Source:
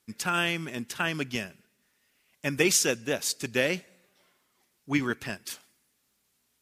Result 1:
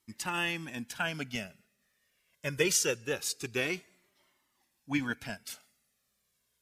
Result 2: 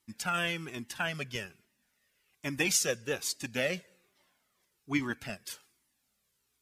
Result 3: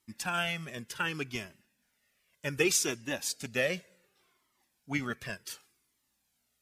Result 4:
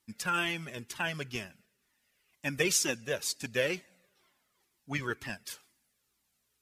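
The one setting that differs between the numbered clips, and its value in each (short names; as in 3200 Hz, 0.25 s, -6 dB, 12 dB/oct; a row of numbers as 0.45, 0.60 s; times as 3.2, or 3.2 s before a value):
cascading flanger, rate: 0.24, 1.2, 0.67, 2.1 Hz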